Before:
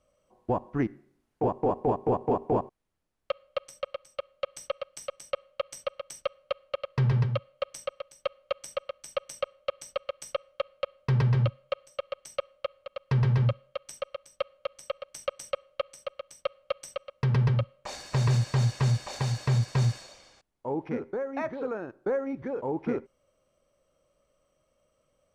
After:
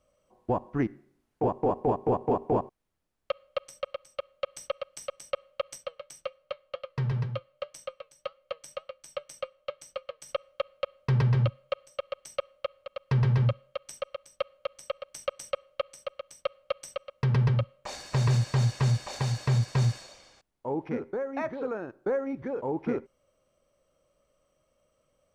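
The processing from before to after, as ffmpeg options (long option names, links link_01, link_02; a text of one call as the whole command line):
ffmpeg -i in.wav -filter_complex "[0:a]asplit=3[link_01][link_02][link_03];[link_01]afade=type=out:start_time=5.76:duration=0.02[link_04];[link_02]flanger=delay=5.7:depth=1.1:regen=76:speed=1.9:shape=sinusoidal,afade=type=in:start_time=5.76:duration=0.02,afade=type=out:start_time=10.28:duration=0.02[link_05];[link_03]afade=type=in:start_time=10.28:duration=0.02[link_06];[link_04][link_05][link_06]amix=inputs=3:normalize=0" out.wav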